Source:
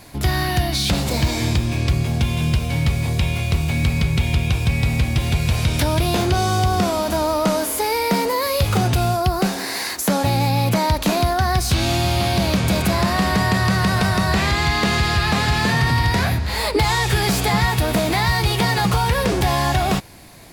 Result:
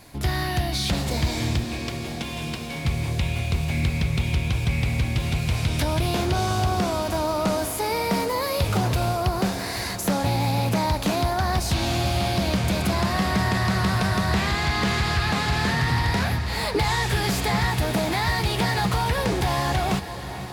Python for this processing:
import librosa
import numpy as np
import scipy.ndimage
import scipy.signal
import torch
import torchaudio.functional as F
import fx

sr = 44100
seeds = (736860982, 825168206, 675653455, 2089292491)

y = fx.highpass(x, sr, hz=190.0, slope=24, at=(1.64, 2.85))
y = fx.echo_diffused(y, sr, ms=510, feedback_pct=72, wet_db=-13.0)
y = fx.doppler_dist(y, sr, depth_ms=0.19)
y = y * 10.0 ** (-5.0 / 20.0)